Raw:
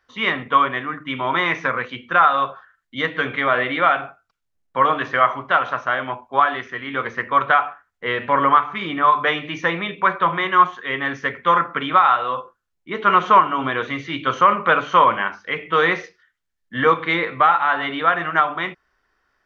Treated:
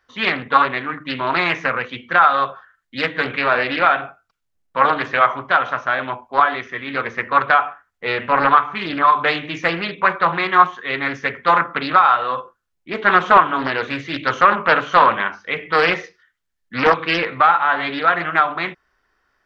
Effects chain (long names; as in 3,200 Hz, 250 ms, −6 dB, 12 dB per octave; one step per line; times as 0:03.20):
highs frequency-modulated by the lows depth 0.44 ms
level +1.5 dB